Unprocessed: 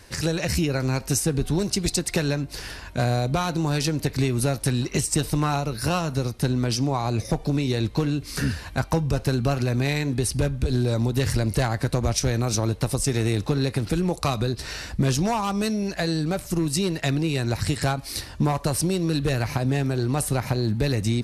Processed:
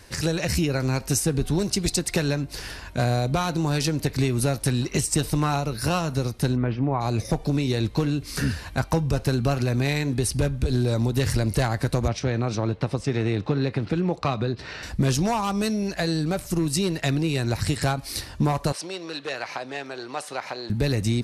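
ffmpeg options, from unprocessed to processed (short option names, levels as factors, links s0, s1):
-filter_complex "[0:a]asplit=3[s0][s1][s2];[s0]afade=t=out:st=6.55:d=0.02[s3];[s1]lowpass=f=2300:w=0.5412,lowpass=f=2300:w=1.3066,afade=t=in:st=6.55:d=0.02,afade=t=out:st=7:d=0.02[s4];[s2]afade=t=in:st=7:d=0.02[s5];[s3][s4][s5]amix=inputs=3:normalize=0,asettb=1/sr,asplit=3[s6][s7][s8];[s6]atrim=end=12.084[s9];[s7]atrim=start=12.08:end=14.83,asetpts=PTS-STARTPTS,afade=t=in:d=0.004:c=qsin,afade=t=out:st=2.746:d=0.004:c=qsin,highpass=100,lowpass=3200[s10];[s8]atrim=start=14.826[s11];[s9][s10]acrossfade=d=0.004:c1=hsin:c2=qsin[s12];[s12][s11]acrossfade=d=0.004:c1=qsin:c2=hsin,asettb=1/sr,asplit=3[s13][s14][s15];[s13]atrim=end=18.724[s16];[s14]atrim=start=18.72:end=20.7,asetpts=PTS-STARTPTS,afade=t=in:d=0.004:c=qsin,afade=t=out:st=1.976:d=0.004:c=qsin,highpass=590,lowpass=5100[s17];[s15]atrim=start=20.696[s18];[s16][s17]acrossfade=d=0.004:c1=hsin:c2=qsin[s19];[s19][s18]acrossfade=d=0.004:c1=qsin:c2=hsin"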